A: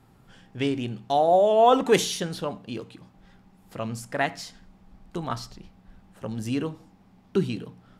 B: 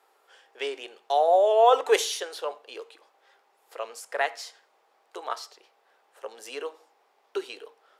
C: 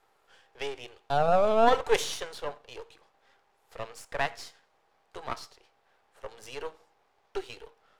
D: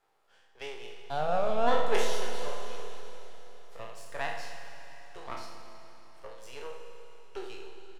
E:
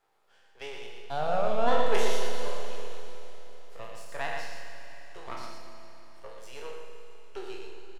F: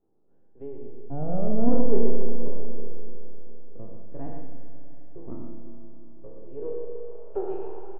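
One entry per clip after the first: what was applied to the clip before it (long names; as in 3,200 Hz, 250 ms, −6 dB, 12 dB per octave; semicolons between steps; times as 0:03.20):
elliptic high-pass filter 430 Hz, stop band 70 dB
gain on one half-wave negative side −12 dB; high-shelf EQ 11,000 Hz −7.5 dB
peak hold with a decay on every bin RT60 0.58 s; double-tracking delay 46 ms −12.5 dB; four-comb reverb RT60 3.9 s, combs from 26 ms, DRR 5 dB; level −7.5 dB
single-tap delay 118 ms −5.5 dB
low-pass filter sweep 280 Hz → 780 Hz, 0:06.26–0:07.70; high-frequency loss of the air 190 metres; level +7.5 dB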